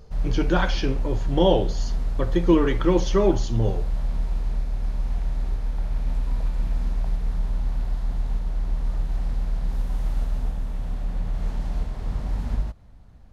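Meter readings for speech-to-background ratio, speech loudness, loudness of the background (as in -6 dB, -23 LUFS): 6.0 dB, -23.5 LUFS, -29.5 LUFS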